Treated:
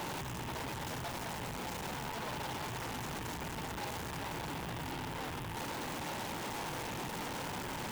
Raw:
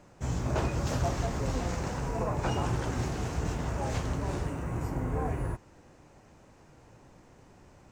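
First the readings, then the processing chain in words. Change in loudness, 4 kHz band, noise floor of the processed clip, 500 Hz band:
-7.5 dB, +3.0 dB, -42 dBFS, -7.5 dB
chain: infinite clipping; HPF 140 Hz 12 dB/oct; bell 890 Hz +7.5 dB 0.33 oct; in parallel at -9.5 dB: sine folder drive 20 dB, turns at -23.5 dBFS; on the sum: gain -9 dB

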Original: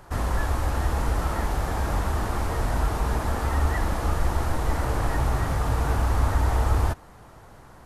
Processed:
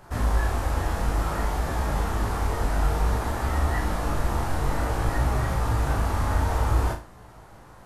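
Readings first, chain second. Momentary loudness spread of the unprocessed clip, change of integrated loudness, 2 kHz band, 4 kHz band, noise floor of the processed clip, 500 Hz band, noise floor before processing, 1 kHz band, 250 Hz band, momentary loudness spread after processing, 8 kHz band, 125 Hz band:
4 LU, -0.5 dB, 0.0 dB, 0.0 dB, -48 dBFS, 0.0 dB, -48 dBFS, 0.0 dB, 0.0 dB, 3 LU, 0.0 dB, -0.5 dB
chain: chorus 0.56 Hz, delay 16 ms, depth 6.6 ms; flutter echo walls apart 6.3 m, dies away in 0.32 s; gain +2 dB

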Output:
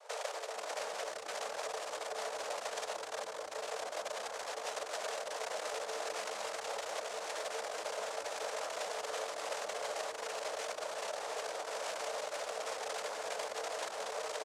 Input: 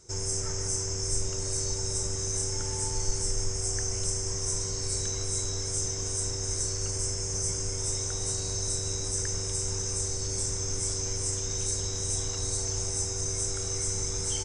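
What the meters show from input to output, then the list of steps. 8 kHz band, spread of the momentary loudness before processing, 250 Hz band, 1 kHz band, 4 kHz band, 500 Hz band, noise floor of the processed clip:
-18.5 dB, 1 LU, -18.0 dB, +7.0 dB, -8.5 dB, -0.5 dB, -45 dBFS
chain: tilt -4 dB/oct; limiter -25 dBFS, peak gain reduction 28.5 dB; sample-and-hold 22×; wrapped overs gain 31.5 dB; noise vocoder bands 2; rippled Chebyshev high-pass 430 Hz, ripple 6 dB; frequency-shifting echo 0.227 s, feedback 43%, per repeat -120 Hz, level -18 dB; gain +3 dB

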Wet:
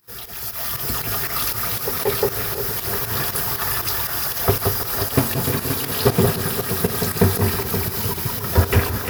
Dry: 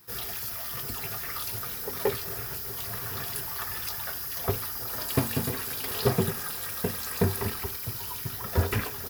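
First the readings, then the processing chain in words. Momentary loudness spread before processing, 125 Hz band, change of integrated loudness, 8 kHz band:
5 LU, +10.0 dB, +9.5 dB, +9.5 dB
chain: AGC gain up to 10.5 dB; echo with dull and thin repeats by turns 0.175 s, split 1500 Hz, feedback 70%, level -3.5 dB; pump 118 bpm, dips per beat 2, -13 dB, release 0.103 s; warbling echo 0.32 s, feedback 79%, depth 108 cents, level -15.5 dB

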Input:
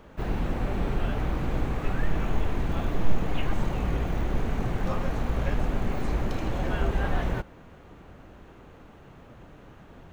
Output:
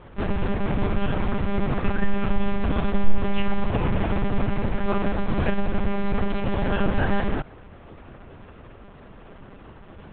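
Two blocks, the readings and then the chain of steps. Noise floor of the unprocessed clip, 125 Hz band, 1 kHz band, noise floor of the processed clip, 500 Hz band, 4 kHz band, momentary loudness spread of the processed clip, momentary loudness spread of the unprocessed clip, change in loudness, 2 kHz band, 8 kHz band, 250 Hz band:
-50 dBFS, +2.5 dB, +5.0 dB, -46 dBFS, +5.5 dB, +4.0 dB, 21 LU, 21 LU, +4.0 dB, +5.0 dB, n/a, +6.5 dB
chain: monotone LPC vocoder at 8 kHz 200 Hz; gain +4.5 dB

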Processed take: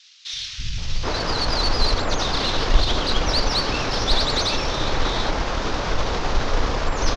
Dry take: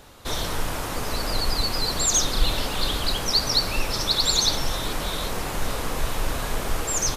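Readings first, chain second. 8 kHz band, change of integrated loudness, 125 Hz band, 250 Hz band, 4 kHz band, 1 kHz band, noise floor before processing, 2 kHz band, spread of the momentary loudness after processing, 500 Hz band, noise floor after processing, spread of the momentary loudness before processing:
-8.5 dB, +1.5 dB, +4.5 dB, +4.0 dB, +0.5 dB, +5.0 dB, -30 dBFS, +4.5 dB, 8 LU, +5.0 dB, -34 dBFS, 9 LU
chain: CVSD 32 kbps; three bands offset in time highs, lows, mids 0.33/0.78 s, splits 160/2500 Hz; added harmonics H 8 -32 dB, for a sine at -8.5 dBFS; gain +6 dB

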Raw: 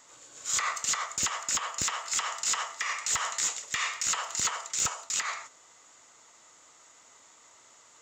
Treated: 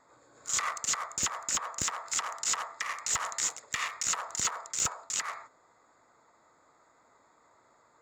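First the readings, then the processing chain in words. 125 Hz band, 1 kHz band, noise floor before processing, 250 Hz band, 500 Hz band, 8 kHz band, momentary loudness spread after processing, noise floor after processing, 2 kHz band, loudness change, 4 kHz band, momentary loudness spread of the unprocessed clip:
0.0 dB, -1.5 dB, -58 dBFS, 0.0 dB, -0.5 dB, -2.0 dB, 5 LU, -66 dBFS, -3.5 dB, -2.0 dB, -3.5 dB, 4 LU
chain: Wiener smoothing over 15 samples

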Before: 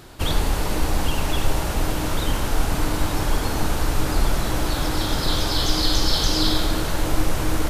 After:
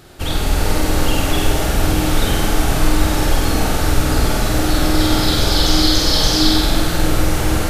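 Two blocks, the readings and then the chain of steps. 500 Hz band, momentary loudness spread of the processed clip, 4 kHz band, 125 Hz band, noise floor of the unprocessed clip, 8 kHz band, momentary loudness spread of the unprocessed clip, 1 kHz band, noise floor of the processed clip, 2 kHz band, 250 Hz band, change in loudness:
+6.5 dB, 5 LU, +6.5 dB, +6.5 dB, -25 dBFS, +6.5 dB, 5 LU, +5.0 dB, -19 dBFS, +6.5 dB, +8.0 dB, +6.5 dB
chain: notch 1000 Hz, Q 7.2; AGC gain up to 5.5 dB; flutter echo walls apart 8.3 m, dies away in 0.85 s

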